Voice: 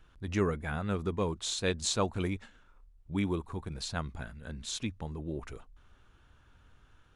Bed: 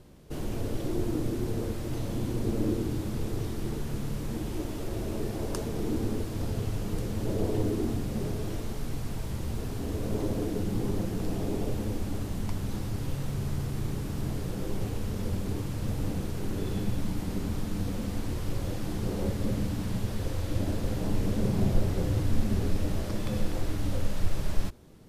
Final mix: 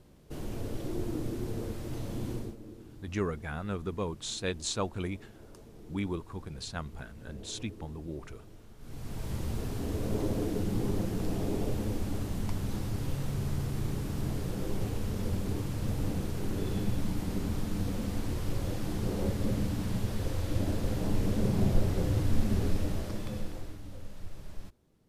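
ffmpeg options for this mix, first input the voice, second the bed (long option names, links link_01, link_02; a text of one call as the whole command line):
ffmpeg -i stem1.wav -i stem2.wav -filter_complex "[0:a]adelay=2800,volume=-2.5dB[link_01];[1:a]volume=14dB,afade=type=out:start_time=2.33:duration=0.23:silence=0.177828,afade=type=in:start_time=8.78:duration=0.56:silence=0.11885,afade=type=out:start_time=22.67:duration=1.14:silence=0.199526[link_02];[link_01][link_02]amix=inputs=2:normalize=0" out.wav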